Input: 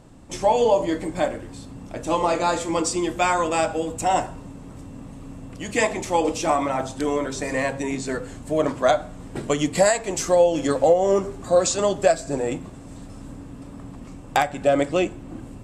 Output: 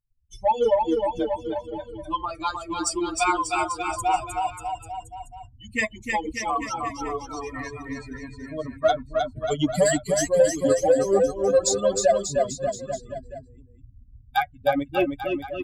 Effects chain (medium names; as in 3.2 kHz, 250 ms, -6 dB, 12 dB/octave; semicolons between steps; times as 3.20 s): expander on every frequency bin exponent 3; in parallel at -3.5 dB: saturation -20.5 dBFS, distortion -12 dB; on the sum: bouncing-ball echo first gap 310 ms, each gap 0.9×, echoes 5